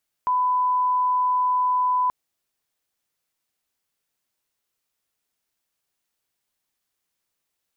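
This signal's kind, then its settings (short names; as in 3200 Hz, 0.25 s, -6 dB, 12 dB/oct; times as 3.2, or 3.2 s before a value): line-up tone -18 dBFS 1.83 s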